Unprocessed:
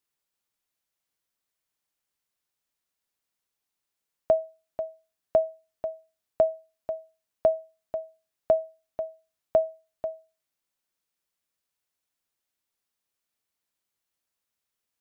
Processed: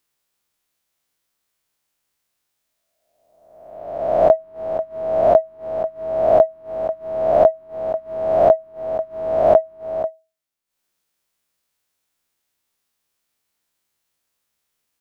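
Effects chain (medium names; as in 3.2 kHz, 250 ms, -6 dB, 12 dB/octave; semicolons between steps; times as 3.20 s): reverse spectral sustain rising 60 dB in 1.19 s; transient shaper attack +2 dB, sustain -10 dB; trim +6.5 dB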